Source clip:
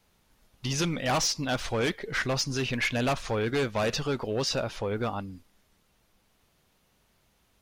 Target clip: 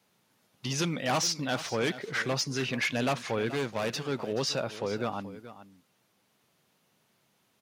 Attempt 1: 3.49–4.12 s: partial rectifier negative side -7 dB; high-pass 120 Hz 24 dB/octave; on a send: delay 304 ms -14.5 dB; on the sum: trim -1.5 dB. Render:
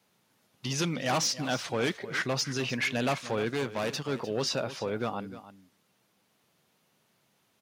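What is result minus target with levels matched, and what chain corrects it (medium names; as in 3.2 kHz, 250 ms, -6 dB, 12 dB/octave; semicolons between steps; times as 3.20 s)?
echo 124 ms early
3.49–4.12 s: partial rectifier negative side -7 dB; high-pass 120 Hz 24 dB/octave; on a send: delay 428 ms -14.5 dB; on the sum: trim -1.5 dB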